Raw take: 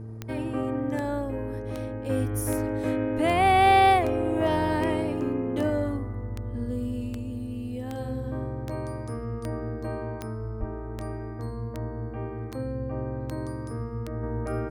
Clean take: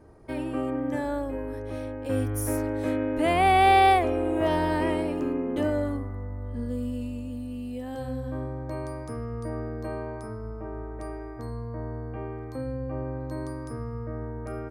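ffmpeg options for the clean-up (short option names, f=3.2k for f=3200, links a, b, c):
-filter_complex "[0:a]adeclick=t=4,bandreject=f=111.4:t=h:w=4,bandreject=f=222.8:t=h:w=4,bandreject=f=334.2:t=h:w=4,bandreject=f=445.6:t=h:w=4,asplit=3[a][b][c];[a]afade=t=out:st=10.59:d=0.02[d];[b]highpass=f=140:w=0.5412,highpass=f=140:w=1.3066,afade=t=in:st=10.59:d=0.02,afade=t=out:st=10.71:d=0.02[e];[c]afade=t=in:st=10.71:d=0.02[f];[d][e][f]amix=inputs=3:normalize=0,asetnsamples=n=441:p=0,asendcmd='14.23 volume volume -4.5dB',volume=0dB"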